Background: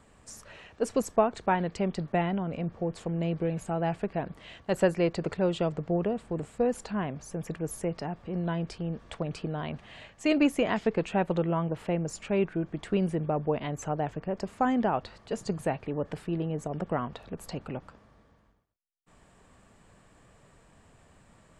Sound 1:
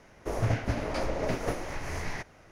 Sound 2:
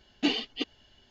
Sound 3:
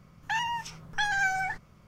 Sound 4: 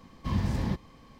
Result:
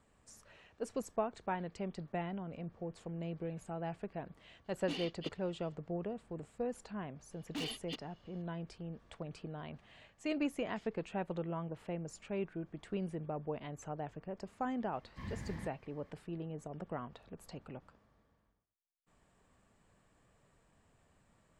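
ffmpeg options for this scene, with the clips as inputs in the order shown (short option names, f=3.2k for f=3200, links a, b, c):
-filter_complex "[2:a]asplit=2[a][b];[0:a]volume=-11.5dB[c];[a]asoftclip=type=tanh:threshold=-23dB[d];[b]asoftclip=type=hard:threshold=-27.5dB[e];[4:a]equalizer=f=1.9k:t=o:w=0.59:g=12[f];[d]atrim=end=1.1,asetpts=PTS-STARTPTS,volume=-11.5dB,afade=t=in:d=0.004:c=hsin,afade=t=out:st=1.096:d=0.004:c=hsin,adelay=205065S[g];[e]atrim=end=1.1,asetpts=PTS-STARTPTS,volume=-9dB,afade=t=in:d=0.004:c=hsin,afade=t=out:st=1.096:d=0.004:c=hsin,adelay=7320[h];[f]atrim=end=1.19,asetpts=PTS-STARTPTS,volume=-16.5dB,afade=t=in:d=0.004:c=hsin,afade=t=out:st=1.186:d=0.004:c=hsin,adelay=657972S[i];[c][g][h][i]amix=inputs=4:normalize=0"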